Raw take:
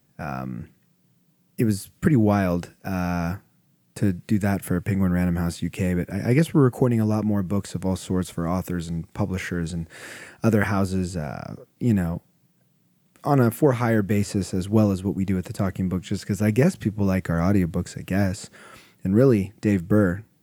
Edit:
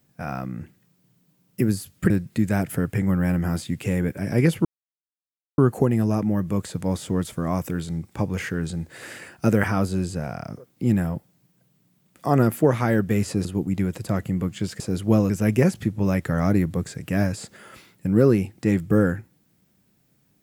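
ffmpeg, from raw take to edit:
ffmpeg -i in.wav -filter_complex "[0:a]asplit=6[link_01][link_02][link_03][link_04][link_05][link_06];[link_01]atrim=end=2.102[link_07];[link_02]atrim=start=4.028:end=6.58,asetpts=PTS-STARTPTS,afade=type=out:start_time=2.548:duration=0.004:curve=hsin,apad=pad_dur=0.93[link_08];[link_03]atrim=start=6.58:end=14.452,asetpts=PTS-STARTPTS,afade=type=in:duration=0.004:curve=hsin[link_09];[link_04]atrim=start=14.948:end=16.302[link_10];[link_05]atrim=start=14.448:end=14.952[link_11];[link_06]atrim=start=16.298[link_12];[link_08][link_09]concat=n=2:v=0:a=1[link_13];[link_07][link_13]acrossfade=duration=0.004:curve1=hsin:curve2=hsin[link_14];[link_14][link_10]acrossfade=duration=0.004:curve1=hsin:curve2=hsin[link_15];[link_15][link_11]acrossfade=duration=0.004:curve1=hsin:curve2=hsin[link_16];[link_16][link_12]acrossfade=duration=0.004:curve1=hsin:curve2=hsin" out.wav

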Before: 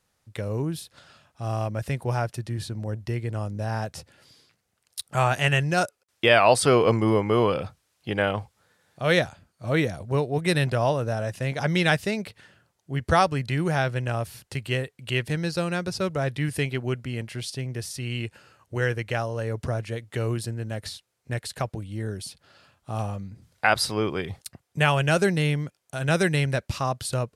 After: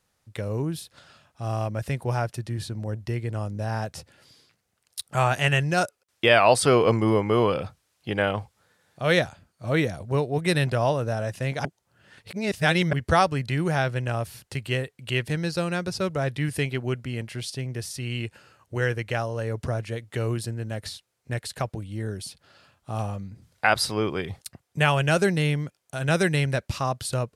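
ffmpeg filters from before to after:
ffmpeg -i in.wav -filter_complex "[0:a]asplit=3[link_01][link_02][link_03];[link_01]atrim=end=11.652[link_04];[link_02]atrim=start=11.648:end=12.932,asetpts=PTS-STARTPTS,areverse[link_05];[link_03]atrim=start=12.928[link_06];[link_04][link_05]acrossfade=duration=0.004:curve1=hsin:curve2=hsin[link_07];[link_07][link_06]acrossfade=duration=0.004:curve1=hsin:curve2=hsin" out.wav

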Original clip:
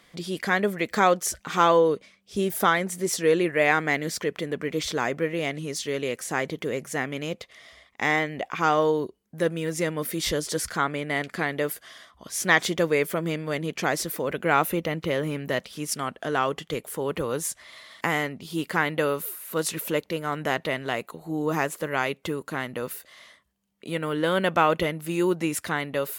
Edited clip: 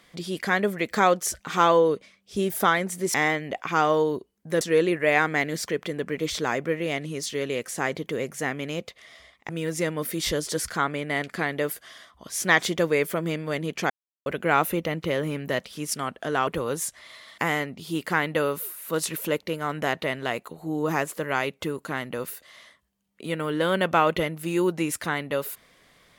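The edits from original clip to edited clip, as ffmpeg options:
ffmpeg -i in.wav -filter_complex "[0:a]asplit=7[link_01][link_02][link_03][link_04][link_05][link_06][link_07];[link_01]atrim=end=3.142[link_08];[link_02]atrim=start=8.018:end=9.492[link_09];[link_03]atrim=start=3.138:end=8.022[link_10];[link_04]atrim=start=9.488:end=13.9,asetpts=PTS-STARTPTS,afade=type=out:start_time=4.408:duration=0.004:curve=hsin[link_11];[link_05]atrim=start=13.9:end=14.26,asetpts=PTS-STARTPTS,volume=0[link_12];[link_06]atrim=start=14.26:end=16.472,asetpts=PTS-STARTPTS,afade=type=in:duration=0.004:curve=hsin[link_13];[link_07]atrim=start=17.098[link_14];[link_08][link_09]acrossfade=duration=0.004:curve1=hsin:curve2=hsin[link_15];[link_15][link_10]acrossfade=duration=0.004:curve1=hsin:curve2=hsin[link_16];[link_11][link_12][link_13]concat=n=3:v=0:a=1[link_17];[link_16][link_17]acrossfade=duration=0.004:curve1=hsin:curve2=hsin[link_18];[link_18][link_14]acrossfade=duration=0.004:curve1=hsin:curve2=hsin" out.wav

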